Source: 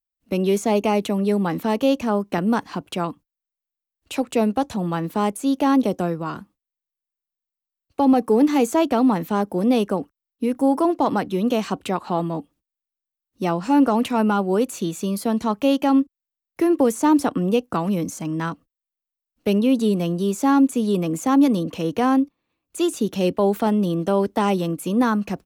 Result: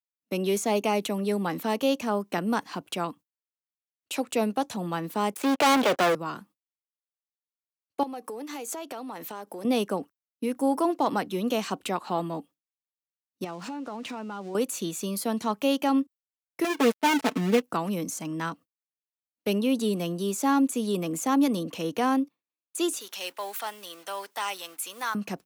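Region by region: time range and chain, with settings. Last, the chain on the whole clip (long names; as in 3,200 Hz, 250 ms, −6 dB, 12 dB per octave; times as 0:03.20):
0:05.34–0:06.15: three-way crossover with the lows and the highs turned down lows −13 dB, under 410 Hz, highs −21 dB, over 3,300 Hz + leveller curve on the samples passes 5
0:08.03–0:09.65: bass and treble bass −13 dB, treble +1 dB + downward compressor 8 to 1, threshold −28 dBFS
0:13.44–0:14.55: spike at every zero crossing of −25.5 dBFS + downward compressor 16 to 1, threshold −25 dBFS + high-frequency loss of the air 110 metres
0:16.64–0:17.62: gap after every zero crossing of 0.28 ms + low-pass filter 3,600 Hz 6 dB per octave + comb filter 4.6 ms, depth 88%
0:23.00–0:25.15: mu-law and A-law mismatch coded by mu + high-pass filter 1,100 Hz
whole clip: spectral tilt +1.5 dB per octave; noise gate with hold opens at −38 dBFS; high-pass filter 120 Hz; level −4 dB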